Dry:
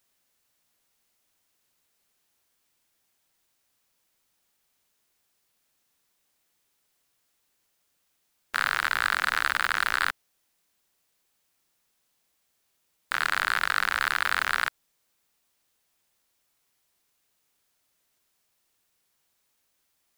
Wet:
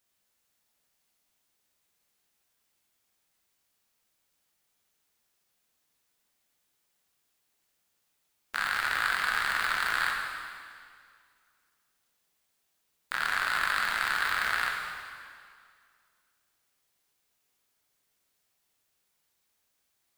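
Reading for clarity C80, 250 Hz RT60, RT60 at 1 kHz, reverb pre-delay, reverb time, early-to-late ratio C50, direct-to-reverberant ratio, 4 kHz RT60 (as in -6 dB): 3.5 dB, 2.1 s, 2.1 s, 6 ms, 2.1 s, 2.0 dB, -0.5 dB, 2.0 s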